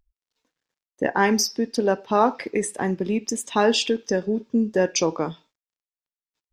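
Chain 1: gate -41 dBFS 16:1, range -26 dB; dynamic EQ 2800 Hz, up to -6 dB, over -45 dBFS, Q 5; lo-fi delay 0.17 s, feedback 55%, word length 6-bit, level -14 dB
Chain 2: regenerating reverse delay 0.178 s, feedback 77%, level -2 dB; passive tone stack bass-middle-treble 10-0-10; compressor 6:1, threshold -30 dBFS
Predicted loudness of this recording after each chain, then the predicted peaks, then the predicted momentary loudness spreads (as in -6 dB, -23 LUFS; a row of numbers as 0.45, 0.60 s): -23.0, -33.5 LUFS; -4.5, -18.5 dBFS; 6, 6 LU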